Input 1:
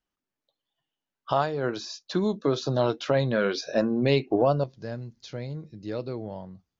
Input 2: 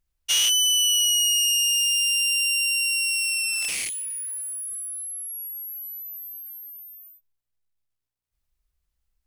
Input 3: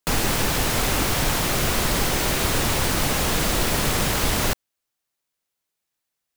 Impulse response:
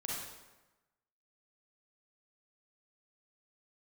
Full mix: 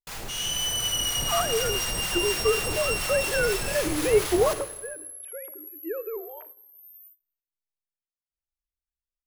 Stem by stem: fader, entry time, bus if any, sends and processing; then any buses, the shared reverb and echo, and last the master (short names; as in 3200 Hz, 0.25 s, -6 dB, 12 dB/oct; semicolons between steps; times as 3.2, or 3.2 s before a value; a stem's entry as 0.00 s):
-3.5 dB, 0.00 s, no bus, send -17 dB, sine-wave speech; rippled Chebyshev high-pass 300 Hz, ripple 6 dB
-4.0 dB, 0.00 s, bus A, send -12 dB, auto duck -18 dB, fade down 0.20 s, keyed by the first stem
-6.0 dB, 0.00 s, bus A, send -6.5 dB, bell 260 Hz -6.5 dB 1.2 oct; limiter -18 dBFS, peak gain reduction 8.5 dB; harmonic tremolo 4.1 Hz, depth 70%, crossover 800 Hz
bus A: 0.0 dB, limiter -31 dBFS, peak gain reduction 17 dB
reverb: on, RT60 1.1 s, pre-delay 33 ms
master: gate -50 dBFS, range -22 dB; AGC gain up to 5 dB